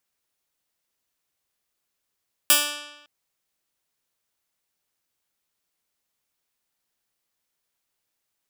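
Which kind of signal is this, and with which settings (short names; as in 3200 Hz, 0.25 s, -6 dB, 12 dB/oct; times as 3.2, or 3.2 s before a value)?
plucked string D4, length 0.56 s, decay 1.03 s, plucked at 0.14, bright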